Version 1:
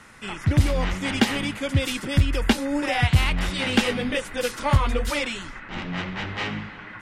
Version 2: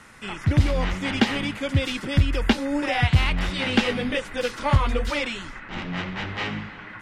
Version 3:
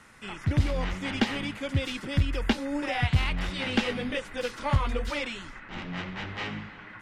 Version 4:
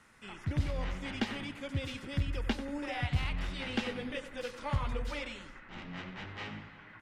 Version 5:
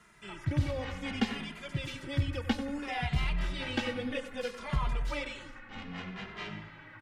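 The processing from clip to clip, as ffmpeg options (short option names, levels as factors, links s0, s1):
-filter_complex "[0:a]acrossover=split=6000[s0][s1];[s1]acompressor=threshold=0.00282:ratio=4:attack=1:release=60[s2];[s0][s2]amix=inputs=2:normalize=0"
-af "aeval=exprs='0.562*(cos(1*acos(clip(val(0)/0.562,-1,1)))-cos(1*PI/2))+0.0224*(cos(4*acos(clip(val(0)/0.562,-1,1)))-cos(4*PI/2))':c=same,volume=0.531"
-filter_complex "[0:a]asplit=2[s0][s1];[s1]adelay=93,lowpass=f=2300:p=1,volume=0.282,asplit=2[s2][s3];[s3]adelay=93,lowpass=f=2300:p=1,volume=0.52,asplit=2[s4][s5];[s5]adelay=93,lowpass=f=2300:p=1,volume=0.52,asplit=2[s6][s7];[s7]adelay=93,lowpass=f=2300:p=1,volume=0.52,asplit=2[s8][s9];[s9]adelay=93,lowpass=f=2300:p=1,volume=0.52,asplit=2[s10][s11];[s11]adelay=93,lowpass=f=2300:p=1,volume=0.52[s12];[s0][s2][s4][s6][s8][s10][s12]amix=inputs=7:normalize=0,volume=0.398"
-filter_complex "[0:a]asplit=2[s0][s1];[s1]adelay=2.5,afreqshift=-0.63[s2];[s0][s2]amix=inputs=2:normalize=1,volume=1.78"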